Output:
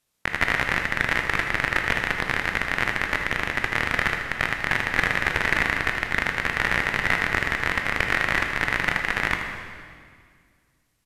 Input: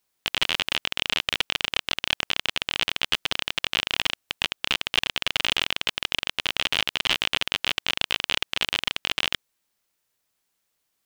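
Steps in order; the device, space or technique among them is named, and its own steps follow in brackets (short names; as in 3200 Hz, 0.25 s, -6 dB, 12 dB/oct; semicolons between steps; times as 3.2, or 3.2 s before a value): monster voice (pitch shift -6 st; formant shift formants -2 st; low shelf 210 Hz +8.5 dB; echo 79 ms -10 dB; reverb RT60 2.0 s, pre-delay 15 ms, DRR 3.5 dB)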